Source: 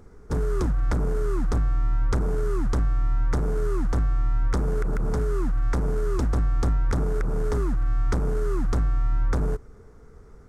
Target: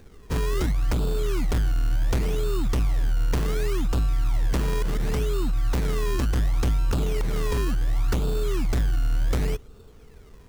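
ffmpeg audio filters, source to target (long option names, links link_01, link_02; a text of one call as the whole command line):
ffmpeg -i in.wav -filter_complex "[0:a]acrossover=split=2100[link_01][link_02];[link_01]acrusher=samples=21:mix=1:aa=0.000001:lfo=1:lforange=21:lforate=0.69[link_03];[link_03][link_02]amix=inputs=2:normalize=0" out.wav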